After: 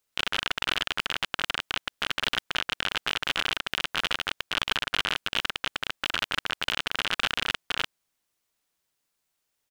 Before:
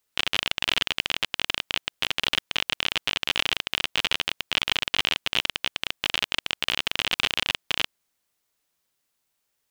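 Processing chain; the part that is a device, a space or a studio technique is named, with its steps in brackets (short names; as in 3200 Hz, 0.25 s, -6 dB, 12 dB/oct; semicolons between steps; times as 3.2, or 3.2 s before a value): octave pedal (harmoniser -12 st -6 dB); gain -3.5 dB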